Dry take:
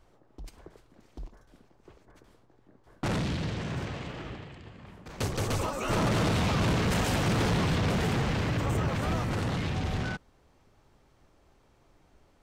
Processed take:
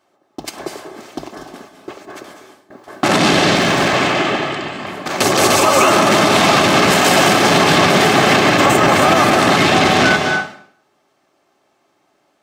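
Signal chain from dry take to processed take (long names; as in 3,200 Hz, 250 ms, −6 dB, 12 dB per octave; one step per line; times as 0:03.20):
high-pass filter 340 Hz 12 dB per octave
noise gate with hold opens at −51 dBFS
convolution reverb RT60 0.60 s, pre-delay 182 ms, DRR 5.5 dB
0:03.55–0:03.95: gain into a clipping stage and back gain 36 dB
notch comb filter 480 Hz
downward compressor, threshold −33 dBFS, peak gain reduction 7 dB
boost into a limiter +28 dB
level −1 dB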